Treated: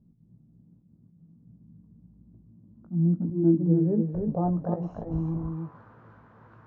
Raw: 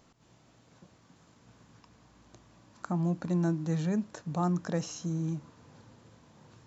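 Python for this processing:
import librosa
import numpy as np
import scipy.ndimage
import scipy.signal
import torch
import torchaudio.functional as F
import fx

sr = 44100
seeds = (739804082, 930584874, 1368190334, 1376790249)

y = fx.dmg_wind(x, sr, seeds[0], corner_hz=110.0, level_db=-45.0, at=(4.14, 5.24), fade=0.02)
y = fx.filter_sweep_lowpass(y, sr, from_hz=190.0, to_hz=1400.0, start_s=2.58, end_s=5.85, q=2.9)
y = y + 10.0 ** (-4.5 / 20.0) * np.pad(y, (int(296 * sr / 1000.0), 0))[:len(y)]
y = fx.auto_swell(y, sr, attack_ms=102.0)
y = fx.doubler(y, sr, ms=18.0, db=-7.0)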